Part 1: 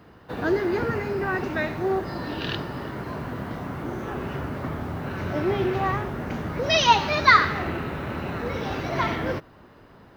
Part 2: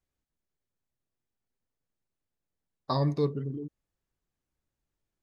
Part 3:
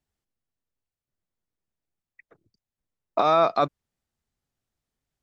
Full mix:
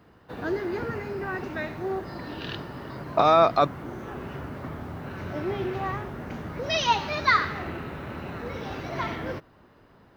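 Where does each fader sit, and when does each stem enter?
-5.5 dB, -16.5 dB, +1.5 dB; 0.00 s, 0.00 s, 0.00 s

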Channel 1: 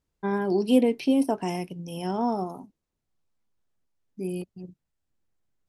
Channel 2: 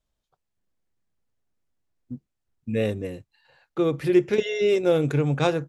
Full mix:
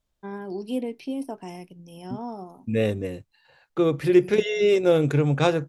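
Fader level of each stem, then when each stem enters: -8.5 dB, +1.5 dB; 0.00 s, 0.00 s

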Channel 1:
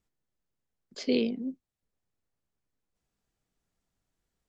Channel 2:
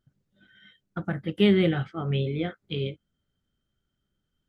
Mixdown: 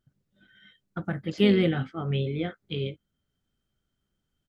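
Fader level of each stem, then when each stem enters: -6.5 dB, -1.0 dB; 0.35 s, 0.00 s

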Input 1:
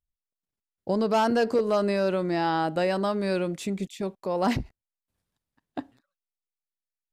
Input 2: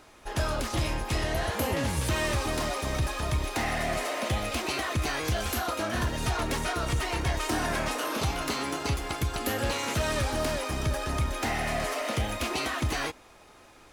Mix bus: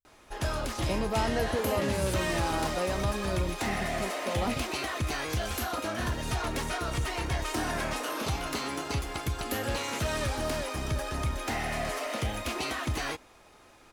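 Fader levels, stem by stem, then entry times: -7.5 dB, -2.5 dB; 0.00 s, 0.05 s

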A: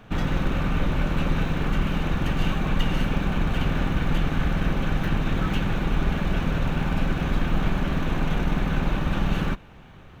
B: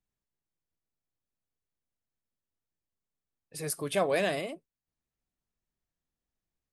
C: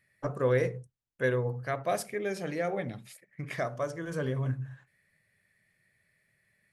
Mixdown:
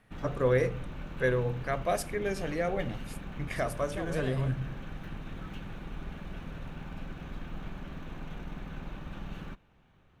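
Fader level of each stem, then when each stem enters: -17.0 dB, -12.5 dB, +0.5 dB; 0.00 s, 0.00 s, 0.00 s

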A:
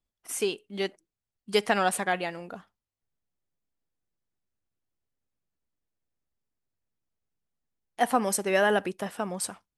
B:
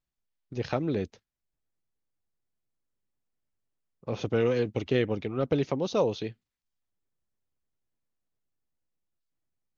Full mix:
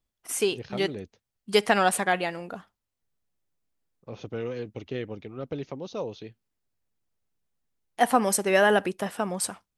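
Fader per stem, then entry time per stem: +3.0 dB, -7.5 dB; 0.00 s, 0.00 s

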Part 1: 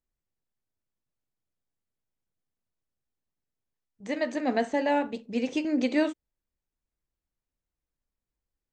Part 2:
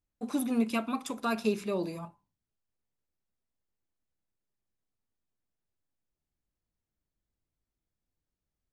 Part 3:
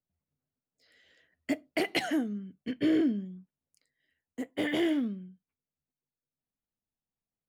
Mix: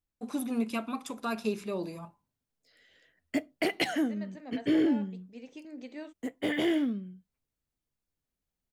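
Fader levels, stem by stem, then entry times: -18.0 dB, -2.5 dB, +0.5 dB; 0.00 s, 0.00 s, 1.85 s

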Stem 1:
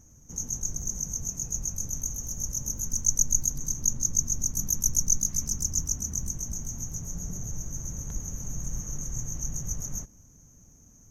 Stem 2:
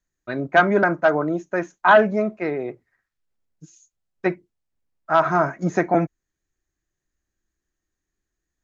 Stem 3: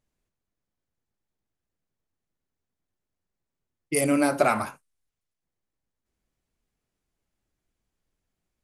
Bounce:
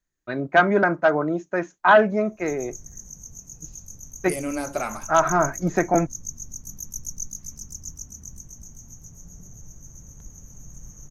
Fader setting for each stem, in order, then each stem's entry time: -9.0 dB, -1.0 dB, -6.5 dB; 2.10 s, 0.00 s, 0.35 s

